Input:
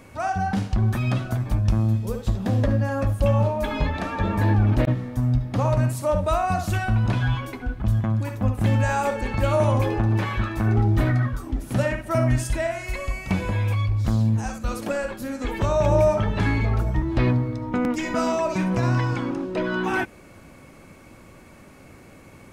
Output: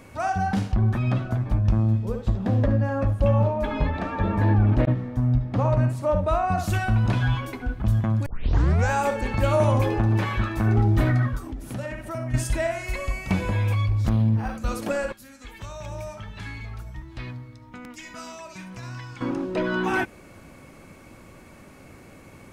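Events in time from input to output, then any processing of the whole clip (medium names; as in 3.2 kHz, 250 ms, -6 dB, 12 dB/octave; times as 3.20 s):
0.72–6.58 s: low-pass 2 kHz 6 dB/octave
8.26 s: tape start 0.65 s
11.38–12.34 s: compression 2.5:1, threshold -32 dBFS
14.09–14.58 s: decimation joined by straight lines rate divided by 6×
15.12–19.21 s: amplifier tone stack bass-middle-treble 5-5-5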